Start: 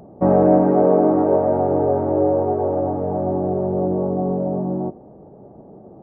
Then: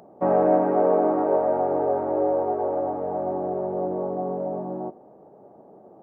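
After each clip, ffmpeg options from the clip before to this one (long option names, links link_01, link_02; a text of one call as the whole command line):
ffmpeg -i in.wav -af "highpass=frequency=820:poles=1,volume=1dB" out.wav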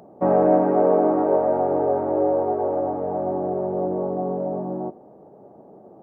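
ffmpeg -i in.wav -af "lowshelf=frequency=440:gain=5" out.wav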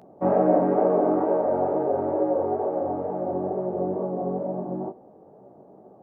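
ffmpeg -i in.wav -af "flanger=delay=15.5:depth=6.8:speed=2.2" out.wav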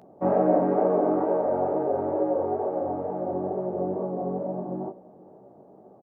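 ffmpeg -i in.wav -af "aecho=1:1:475:0.0841,volume=-1.5dB" out.wav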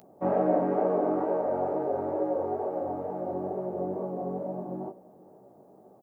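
ffmpeg -i in.wav -af "crystalizer=i=3.5:c=0,volume=-4dB" out.wav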